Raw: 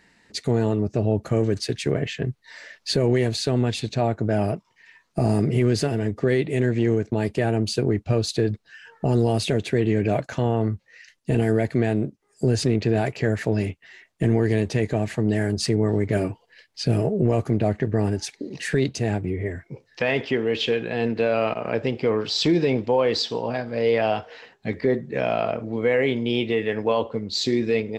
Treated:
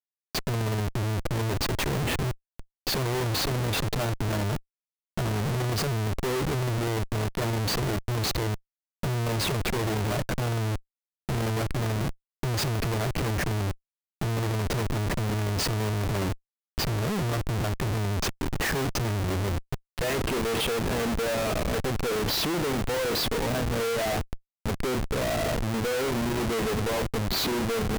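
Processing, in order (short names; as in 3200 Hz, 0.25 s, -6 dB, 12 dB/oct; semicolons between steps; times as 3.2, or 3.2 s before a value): Schmitt trigger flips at -31 dBFS; stuck buffer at 2.49, samples 512, times 8; gain -3.5 dB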